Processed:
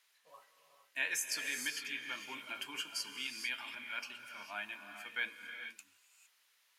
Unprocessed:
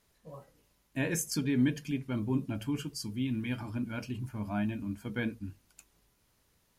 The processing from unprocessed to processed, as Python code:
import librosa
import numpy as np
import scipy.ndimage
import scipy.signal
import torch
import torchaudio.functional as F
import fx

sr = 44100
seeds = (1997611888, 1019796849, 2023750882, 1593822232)

y = scipy.signal.sosfilt(scipy.signal.butter(2, 1100.0, 'highpass', fs=sr, output='sos'), x)
y = fx.peak_eq(y, sr, hz=2600.0, db=7.0, octaves=1.8)
y = fx.rev_gated(y, sr, seeds[0], gate_ms=480, shape='rising', drr_db=6.5)
y = fx.band_squash(y, sr, depth_pct=40, at=(1.02, 3.75))
y = y * librosa.db_to_amplitude(-2.0)